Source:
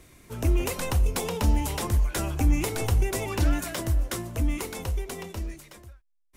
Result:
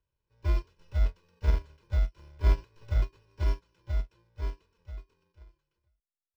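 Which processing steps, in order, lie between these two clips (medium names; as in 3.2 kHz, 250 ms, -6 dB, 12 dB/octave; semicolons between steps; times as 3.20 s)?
bit-reversed sample order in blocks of 64 samples; comb 2 ms, depth 71%; in parallel at -3 dB: companded quantiser 4-bit; on the sum: distance through air 180 m; upward expansion 2.5:1, over -27 dBFS; trim -8 dB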